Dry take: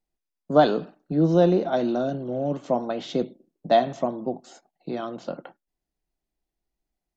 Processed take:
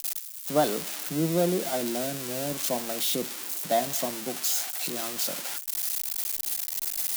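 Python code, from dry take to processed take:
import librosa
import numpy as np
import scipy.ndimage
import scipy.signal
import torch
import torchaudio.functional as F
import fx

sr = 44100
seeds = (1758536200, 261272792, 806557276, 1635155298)

y = x + 0.5 * 10.0 ** (-12.0 / 20.0) * np.diff(np.sign(x), prepend=np.sign(x[:1]))
y = F.gain(torch.from_numpy(y), -6.5).numpy()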